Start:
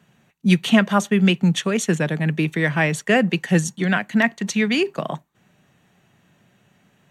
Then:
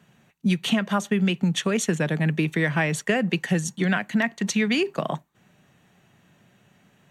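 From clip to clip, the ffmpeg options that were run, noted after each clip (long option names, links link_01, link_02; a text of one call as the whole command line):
ffmpeg -i in.wav -af "acompressor=threshold=-18dB:ratio=10" out.wav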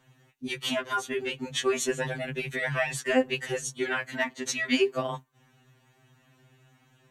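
ffmpeg -i in.wav -af "afftfilt=real='re*2.45*eq(mod(b,6),0)':imag='im*2.45*eq(mod(b,6),0)':win_size=2048:overlap=0.75" out.wav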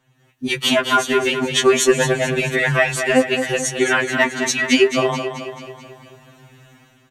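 ffmpeg -i in.wav -filter_complex "[0:a]dynaudnorm=framelen=140:gausssize=5:maxgain=14dB,asplit=2[link_01][link_02];[link_02]aecho=0:1:217|434|651|868|1085|1302:0.376|0.203|0.11|0.0592|0.032|0.0173[link_03];[link_01][link_03]amix=inputs=2:normalize=0,volume=-1dB" out.wav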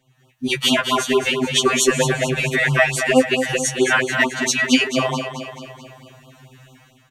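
ffmpeg -i in.wav -af "afftfilt=real='re*(1-between(b*sr/1024,290*pow(2000/290,0.5+0.5*sin(2*PI*4.5*pts/sr))/1.41,290*pow(2000/290,0.5+0.5*sin(2*PI*4.5*pts/sr))*1.41))':imag='im*(1-between(b*sr/1024,290*pow(2000/290,0.5+0.5*sin(2*PI*4.5*pts/sr))/1.41,290*pow(2000/290,0.5+0.5*sin(2*PI*4.5*pts/sr))*1.41))':win_size=1024:overlap=0.75,volume=1dB" out.wav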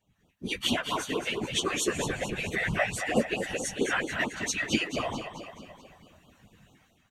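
ffmpeg -i in.wav -af "afftfilt=real='hypot(re,im)*cos(2*PI*random(0))':imag='hypot(re,im)*sin(2*PI*random(1))':win_size=512:overlap=0.75,volume=-5.5dB" out.wav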